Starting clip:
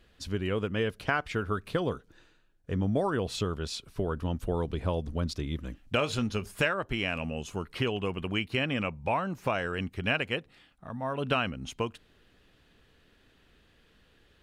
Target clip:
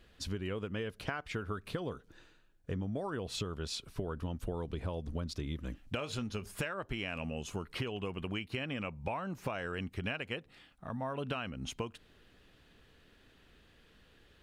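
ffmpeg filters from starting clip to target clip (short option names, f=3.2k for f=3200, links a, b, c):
-af "acompressor=threshold=-34dB:ratio=6"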